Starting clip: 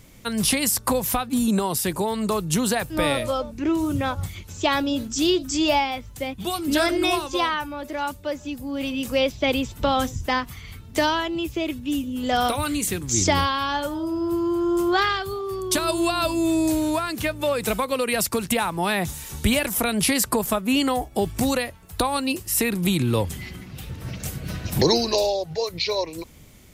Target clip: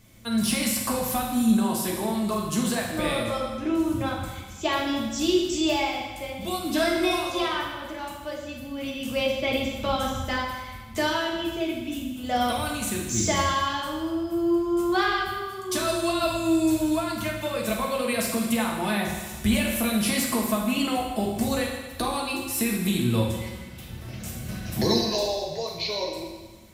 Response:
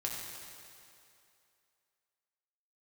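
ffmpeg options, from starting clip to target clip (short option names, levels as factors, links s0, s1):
-filter_complex "[0:a]asettb=1/sr,asplit=3[s0][s1][s2];[s0]atrim=end=15.294[s3];[s1]atrim=start=15.29:end=15.7,asetpts=PTS-STARTPTS,afade=t=in:d=0.004:c=qsin,afade=t=out:st=0.406:d=0.004:c=qsin,highpass=f=370:p=1[s4];[s2]atrim=start=15.696[s5];[s3][s4]acrossfade=d=0.004:c1=hsin:c2=qsin[s6];[s6][s5]acrossfade=d=0.004:c1=qsin:c2=hsin,acrossover=split=4400[s7][s8];[s8]asoftclip=type=tanh:threshold=0.141[s9];[s7][s9]amix=inputs=2:normalize=0[s10];[1:a]atrim=start_sample=2205,asetrate=83790,aresample=44100[s11];[s10][s11]afir=irnorm=-1:irlink=0"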